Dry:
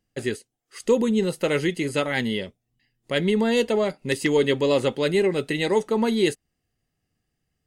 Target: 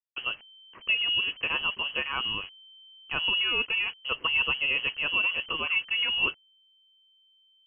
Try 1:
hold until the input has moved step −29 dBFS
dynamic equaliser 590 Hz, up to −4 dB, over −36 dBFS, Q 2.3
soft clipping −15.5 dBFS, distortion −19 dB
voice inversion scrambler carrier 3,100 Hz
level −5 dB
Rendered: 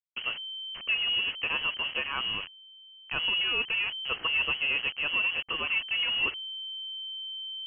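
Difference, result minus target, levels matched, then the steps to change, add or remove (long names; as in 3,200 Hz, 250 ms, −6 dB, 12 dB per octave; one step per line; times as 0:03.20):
soft clipping: distortion +18 dB; hold until the input has moved: distortion +11 dB
change: hold until the input has moved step −38.5 dBFS
change: soft clipping −5 dBFS, distortion −36 dB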